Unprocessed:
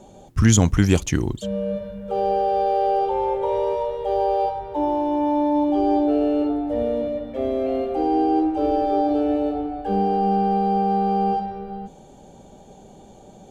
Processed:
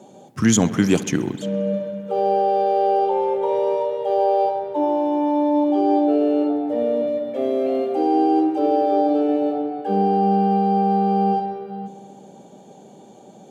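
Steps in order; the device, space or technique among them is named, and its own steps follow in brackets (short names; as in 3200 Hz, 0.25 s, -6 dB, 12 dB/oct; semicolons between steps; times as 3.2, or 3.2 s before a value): filter by subtraction (in parallel: LPF 240 Hz 12 dB/oct + phase invert); on the sum: HPF 120 Hz 24 dB/oct; 7.07–8.59 high shelf 4500 Hz +5.5 dB; dark delay 66 ms, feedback 82%, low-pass 3300 Hz, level -17 dB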